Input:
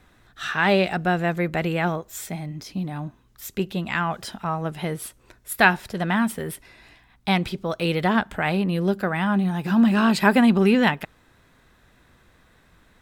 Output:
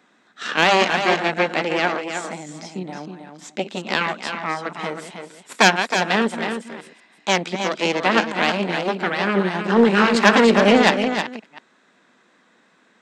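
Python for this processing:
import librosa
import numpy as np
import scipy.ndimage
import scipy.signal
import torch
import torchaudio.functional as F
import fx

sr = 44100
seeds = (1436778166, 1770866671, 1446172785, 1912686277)

p1 = fx.reverse_delay(x, sr, ms=191, wet_db=-10.5)
p2 = fx.cheby_harmonics(p1, sr, harmonics=(6,), levels_db=(-6,), full_scale_db=-1.0)
p3 = scipy.signal.sosfilt(scipy.signal.ellip(3, 1.0, 40, [210.0, 7600.0], 'bandpass', fs=sr, output='sos'), p2)
p4 = 10.0 ** (-11.5 / 20.0) * np.tanh(p3 / 10.0 ** (-11.5 / 20.0))
p5 = p3 + F.gain(torch.from_numpy(p4), -6.0).numpy()
p6 = fx.wow_flutter(p5, sr, seeds[0], rate_hz=2.1, depth_cents=21.0)
p7 = p6 + fx.echo_single(p6, sr, ms=317, db=-7.5, dry=0)
y = F.gain(torch.from_numpy(p7), -3.0).numpy()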